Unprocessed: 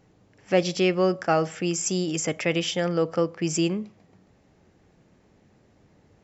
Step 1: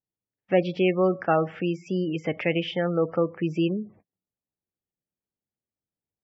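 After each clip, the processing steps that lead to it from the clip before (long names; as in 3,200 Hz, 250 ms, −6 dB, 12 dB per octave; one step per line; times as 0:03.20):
noise gate −49 dBFS, range −38 dB
gate on every frequency bin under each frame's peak −25 dB strong
low-pass filter 3,000 Hz 24 dB per octave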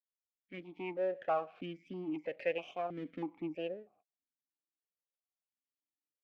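fade in at the beginning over 1.23 s
half-wave rectification
formant filter that steps through the vowels 3.1 Hz
level +1 dB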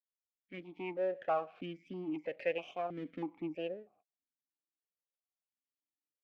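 no processing that can be heard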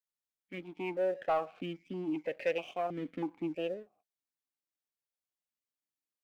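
leveller curve on the samples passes 1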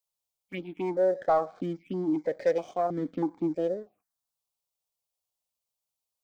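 phaser swept by the level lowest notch 290 Hz, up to 2,700 Hz, full sweep at −36.5 dBFS
level +7.5 dB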